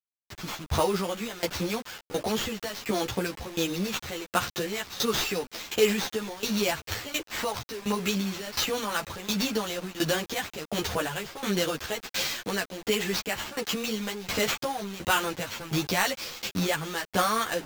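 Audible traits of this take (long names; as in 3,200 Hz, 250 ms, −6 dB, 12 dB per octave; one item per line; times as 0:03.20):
aliases and images of a low sample rate 10,000 Hz, jitter 0%
tremolo saw down 1.4 Hz, depth 90%
a quantiser's noise floor 8 bits, dither none
a shimmering, thickened sound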